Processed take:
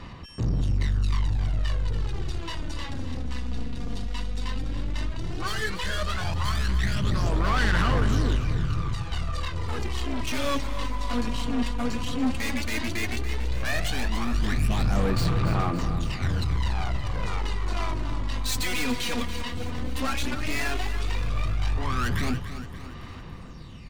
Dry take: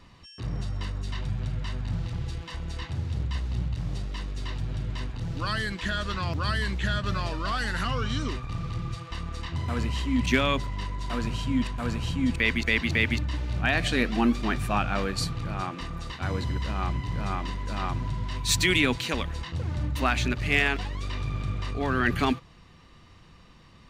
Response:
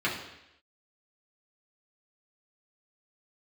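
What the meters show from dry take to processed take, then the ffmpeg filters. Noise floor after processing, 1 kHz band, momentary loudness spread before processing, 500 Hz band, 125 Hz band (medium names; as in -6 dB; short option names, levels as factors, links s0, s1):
-39 dBFS, -0.5 dB, 11 LU, -1.0 dB, +1.5 dB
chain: -af "aeval=exprs='(tanh(50.1*val(0)+0.35)-tanh(0.35))/50.1':c=same,aphaser=in_gain=1:out_gain=1:delay=4.2:decay=0.63:speed=0.13:type=sinusoidal,aecho=1:1:285|570|855|1140|1425|1710:0.266|0.146|0.0805|0.0443|0.0243|0.0134,volume=1.78"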